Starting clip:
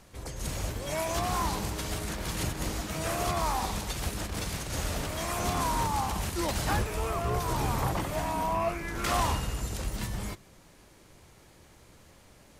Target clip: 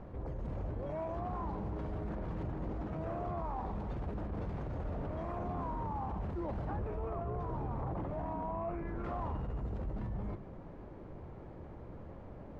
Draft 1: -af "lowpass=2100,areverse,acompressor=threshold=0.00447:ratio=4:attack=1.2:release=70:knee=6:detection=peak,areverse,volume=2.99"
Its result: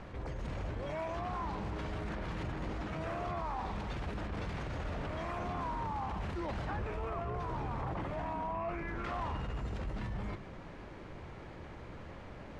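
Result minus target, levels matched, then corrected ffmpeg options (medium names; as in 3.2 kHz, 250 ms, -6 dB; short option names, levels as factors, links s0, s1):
2 kHz band +10.0 dB
-af "lowpass=820,areverse,acompressor=threshold=0.00447:ratio=4:attack=1.2:release=70:knee=6:detection=peak,areverse,volume=2.99"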